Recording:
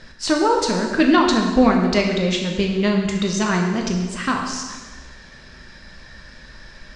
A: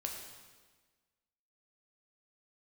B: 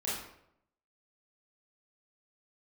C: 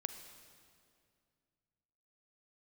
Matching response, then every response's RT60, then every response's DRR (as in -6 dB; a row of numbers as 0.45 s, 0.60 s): A; 1.4 s, 0.75 s, 2.3 s; 0.5 dB, -8.5 dB, 8.5 dB